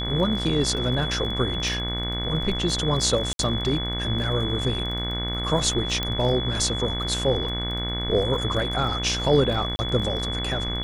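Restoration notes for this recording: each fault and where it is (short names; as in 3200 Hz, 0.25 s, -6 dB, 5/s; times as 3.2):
buzz 60 Hz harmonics 38 -30 dBFS
crackle 25/s -32 dBFS
tone 3400 Hz -29 dBFS
3.33–3.39 gap 62 ms
6.03 pop -11 dBFS
9.76–9.79 gap 30 ms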